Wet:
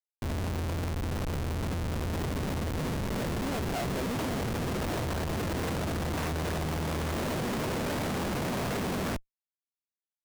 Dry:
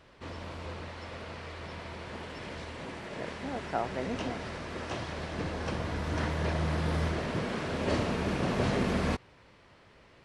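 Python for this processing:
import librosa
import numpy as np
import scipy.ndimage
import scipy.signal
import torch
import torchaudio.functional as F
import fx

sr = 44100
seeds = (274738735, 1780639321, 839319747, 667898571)

y = scipy.signal.sosfilt(scipy.signal.butter(4, 75.0, 'highpass', fs=sr, output='sos'), x)
y = fx.high_shelf(y, sr, hz=3300.0, db=-4.0)
y = fx.schmitt(y, sr, flips_db=-38.0)
y = y * 10.0 ** (3.5 / 20.0)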